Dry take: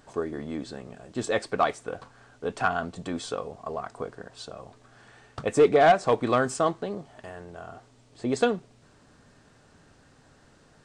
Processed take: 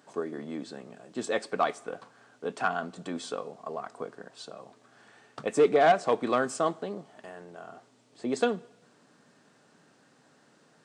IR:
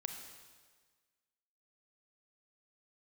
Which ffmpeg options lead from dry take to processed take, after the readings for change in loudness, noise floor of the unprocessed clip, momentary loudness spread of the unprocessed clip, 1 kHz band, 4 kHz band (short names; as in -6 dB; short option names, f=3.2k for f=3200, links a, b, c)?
-3.0 dB, -59 dBFS, 22 LU, -3.0 dB, -3.0 dB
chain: -filter_complex "[0:a]highpass=f=160:w=0.5412,highpass=f=160:w=1.3066,asplit=2[a][b];[1:a]atrim=start_sample=2205,asetrate=66150,aresample=44100[c];[b][c]afir=irnorm=-1:irlink=0,volume=-11.5dB[d];[a][d]amix=inputs=2:normalize=0,volume=-4dB"